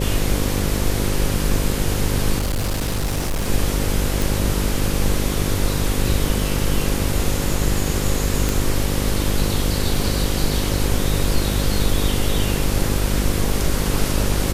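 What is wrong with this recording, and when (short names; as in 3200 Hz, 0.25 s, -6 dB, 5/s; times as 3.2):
buzz 50 Hz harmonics 11 -23 dBFS
2.38–3.49 clipped -18 dBFS
4.22 pop
8.49 pop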